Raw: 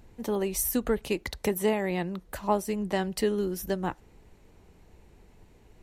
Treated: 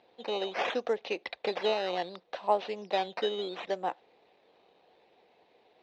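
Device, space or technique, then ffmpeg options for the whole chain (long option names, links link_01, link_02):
circuit-bent sampling toy: -af "acrusher=samples=9:mix=1:aa=0.000001:lfo=1:lforange=9:lforate=0.69,highpass=440,equalizer=frequency=510:width_type=q:width=4:gain=7,equalizer=frequency=730:width_type=q:width=4:gain=8,equalizer=frequency=1400:width_type=q:width=4:gain=-4,equalizer=frequency=2500:width_type=q:width=4:gain=3,equalizer=frequency=3800:width_type=q:width=4:gain=8,lowpass=frequency=4400:width=0.5412,lowpass=frequency=4400:width=1.3066,volume=-3dB"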